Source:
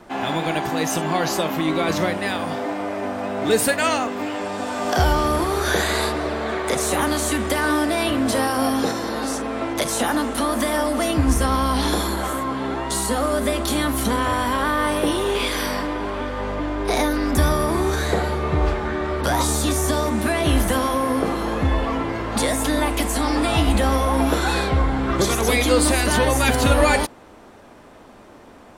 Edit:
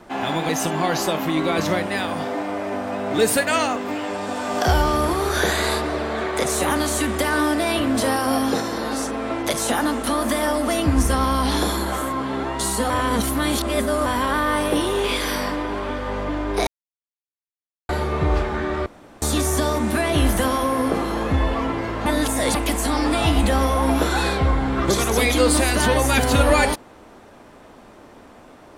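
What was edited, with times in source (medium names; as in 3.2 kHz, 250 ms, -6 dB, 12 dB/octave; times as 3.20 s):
0.49–0.80 s: delete
13.21–14.37 s: reverse
16.98–18.20 s: mute
19.17–19.53 s: room tone
22.37–22.86 s: reverse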